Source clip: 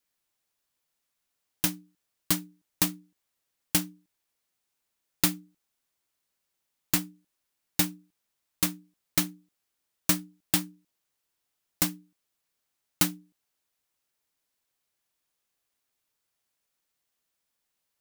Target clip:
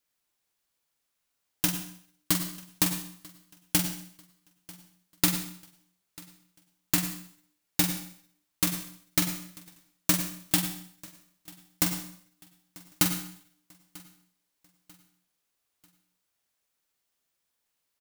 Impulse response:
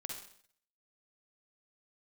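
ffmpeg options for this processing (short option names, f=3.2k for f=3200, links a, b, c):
-filter_complex "[0:a]aecho=1:1:942|1884|2826:0.0708|0.029|0.0119,asplit=2[a][b];[1:a]atrim=start_sample=2205,adelay=45[c];[b][c]afir=irnorm=-1:irlink=0,volume=-3.5dB[d];[a][d]amix=inputs=2:normalize=0"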